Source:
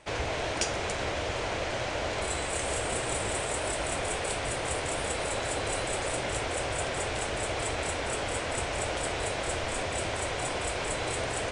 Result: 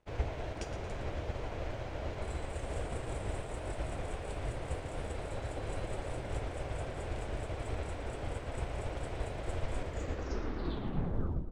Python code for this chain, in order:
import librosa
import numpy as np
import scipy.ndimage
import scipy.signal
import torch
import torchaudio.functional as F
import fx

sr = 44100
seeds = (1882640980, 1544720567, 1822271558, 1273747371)

y = fx.tape_stop_end(x, sr, length_s=1.76)
y = fx.tilt_eq(y, sr, slope=-3.0)
y = np.sign(y) * np.maximum(np.abs(y) - 10.0 ** (-54.5 / 20.0), 0.0)
y = fx.echo_split(y, sr, split_hz=530.0, low_ms=735, high_ms=114, feedback_pct=52, wet_db=-11)
y = fx.upward_expand(y, sr, threshold_db=-35.0, expansion=1.5)
y = y * 10.0 ** (-8.0 / 20.0)